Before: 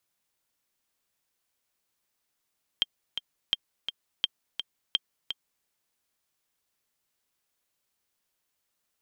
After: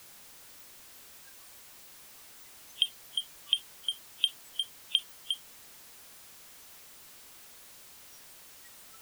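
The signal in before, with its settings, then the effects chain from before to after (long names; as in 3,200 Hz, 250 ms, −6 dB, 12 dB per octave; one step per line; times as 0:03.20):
click track 169 BPM, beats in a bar 2, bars 4, 3,180 Hz, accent 8 dB −10.5 dBFS
converter with a step at zero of −26 dBFS
noise reduction from a noise print of the clip's start 20 dB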